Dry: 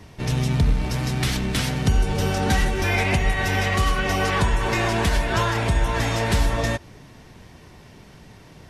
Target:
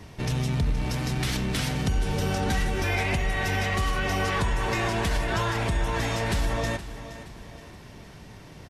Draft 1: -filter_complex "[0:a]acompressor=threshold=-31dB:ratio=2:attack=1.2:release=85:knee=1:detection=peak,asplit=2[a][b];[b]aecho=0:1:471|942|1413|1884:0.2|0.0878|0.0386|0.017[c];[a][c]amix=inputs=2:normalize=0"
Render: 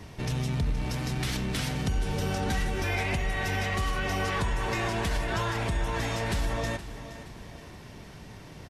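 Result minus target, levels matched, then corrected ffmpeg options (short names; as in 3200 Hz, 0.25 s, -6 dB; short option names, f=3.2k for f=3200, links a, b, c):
compressor: peak gain reduction +3 dB
-filter_complex "[0:a]acompressor=threshold=-25dB:ratio=2:attack=1.2:release=85:knee=1:detection=peak,asplit=2[a][b];[b]aecho=0:1:471|942|1413|1884:0.2|0.0878|0.0386|0.017[c];[a][c]amix=inputs=2:normalize=0"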